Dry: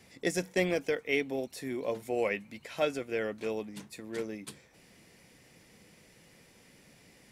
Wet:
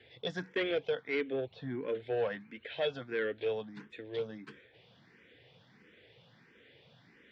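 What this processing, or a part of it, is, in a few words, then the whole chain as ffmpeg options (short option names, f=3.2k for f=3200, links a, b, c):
barber-pole phaser into a guitar amplifier: -filter_complex "[0:a]asettb=1/sr,asplit=3[a][b][c];[a]atrim=end=1.334[d];[b]atrim=start=1.33:end=1.88,asetpts=PTS-STARTPTS,afade=t=in:d=0.004:c=qsin,afade=t=out:st=0.546:d=0.004:c=qsin,bass=f=250:g=5,treble=f=4k:g=-13[e];[c]atrim=start=1.876[f];[d][e]acrossfade=d=0.004:c1=hsin:c2=qsin[g];[g][f]acrossfade=d=0.004:c1=qsin:c2=hsin,asplit=2[h][i];[i]afreqshift=1.5[j];[h][j]amix=inputs=2:normalize=1,asoftclip=type=tanh:threshold=-27dB,highpass=78,equalizer=f=120:t=q:w=4:g=7,equalizer=f=190:t=q:w=4:g=-3,equalizer=f=450:t=q:w=4:g=6,equalizer=f=1.6k:t=q:w=4:g=8,equalizer=f=3.4k:t=q:w=4:g=10,lowpass=f=3.9k:w=0.5412,lowpass=f=3.9k:w=1.3066,volume=-1dB"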